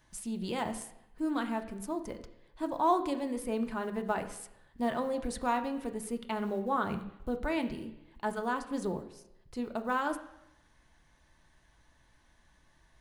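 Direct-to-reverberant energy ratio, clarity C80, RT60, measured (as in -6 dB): 5.5 dB, 14.0 dB, 0.85 s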